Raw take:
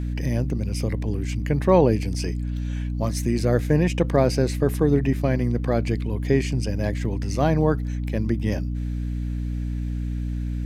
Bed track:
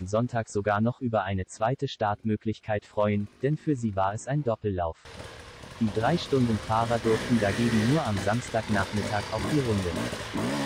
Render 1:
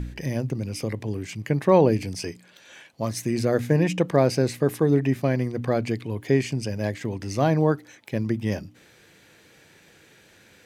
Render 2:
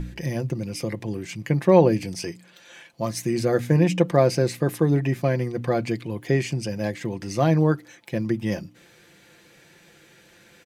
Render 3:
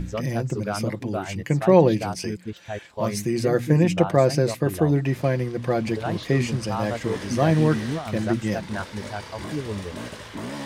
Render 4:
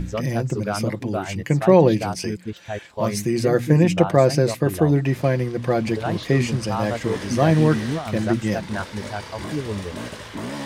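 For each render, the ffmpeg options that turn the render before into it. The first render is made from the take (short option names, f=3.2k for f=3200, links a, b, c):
-af "bandreject=f=60:t=h:w=4,bandreject=f=120:t=h:w=4,bandreject=f=180:t=h:w=4,bandreject=f=240:t=h:w=4,bandreject=f=300:t=h:w=4"
-af "aecho=1:1:5.8:0.47"
-filter_complex "[1:a]volume=-4dB[a];[0:a][a]amix=inputs=2:normalize=0"
-af "volume=2.5dB,alimiter=limit=-2dB:level=0:latency=1"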